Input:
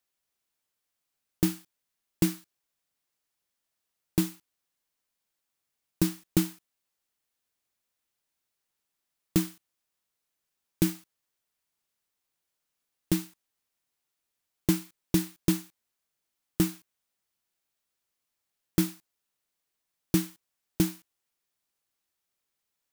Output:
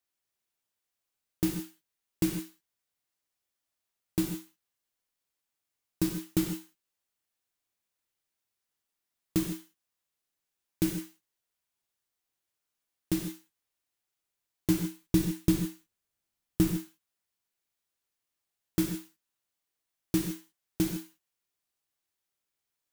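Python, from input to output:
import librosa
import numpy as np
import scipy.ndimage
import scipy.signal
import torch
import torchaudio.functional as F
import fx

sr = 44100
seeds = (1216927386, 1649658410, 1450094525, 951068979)

y = fx.low_shelf(x, sr, hz=200.0, db=8.5, at=(14.7, 16.72))
y = fx.rev_gated(y, sr, seeds[0], gate_ms=180, shape='flat', drr_db=3.0)
y = y * 10.0 ** (-4.5 / 20.0)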